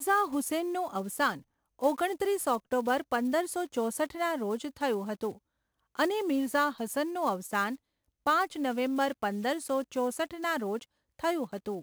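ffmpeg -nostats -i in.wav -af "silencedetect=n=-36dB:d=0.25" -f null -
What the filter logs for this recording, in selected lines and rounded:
silence_start: 1.35
silence_end: 1.82 | silence_duration: 0.47
silence_start: 5.31
silence_end: 5.99 | silence_duration: 0.68
silence_start: 7.75
silence_end: 8.27 | silence_duration: 0.52
silence_start: 10.82
silence_end: 11.19 | silence_duration: 0.37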